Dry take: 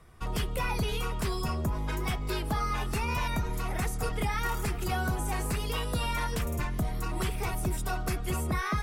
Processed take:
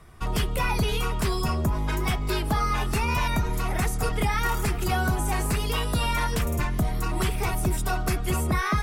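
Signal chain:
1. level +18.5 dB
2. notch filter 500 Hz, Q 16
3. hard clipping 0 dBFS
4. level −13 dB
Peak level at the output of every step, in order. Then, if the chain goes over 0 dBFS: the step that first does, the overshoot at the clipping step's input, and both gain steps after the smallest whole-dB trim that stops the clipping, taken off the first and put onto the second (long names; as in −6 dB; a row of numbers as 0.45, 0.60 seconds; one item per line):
−1.5, −1.5, −1.5, −14.5 dBFS
no step passes full scale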